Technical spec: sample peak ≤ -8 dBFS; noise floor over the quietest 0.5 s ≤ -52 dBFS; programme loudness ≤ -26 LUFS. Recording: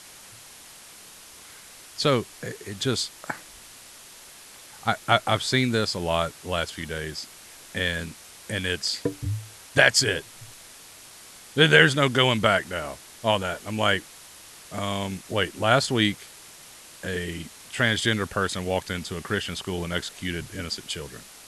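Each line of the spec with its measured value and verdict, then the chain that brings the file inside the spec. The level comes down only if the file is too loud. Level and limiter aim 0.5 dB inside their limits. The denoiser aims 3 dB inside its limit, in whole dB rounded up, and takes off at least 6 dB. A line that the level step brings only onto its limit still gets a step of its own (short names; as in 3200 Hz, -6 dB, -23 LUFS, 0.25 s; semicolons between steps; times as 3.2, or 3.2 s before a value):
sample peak -3.5 dBFS: fail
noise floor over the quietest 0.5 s -47 dBFS: fail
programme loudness -24.5 LUFS: fail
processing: denoiser 6 dB, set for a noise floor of -47 dBFS; gain -2 dB; limiter -8.5 dBFS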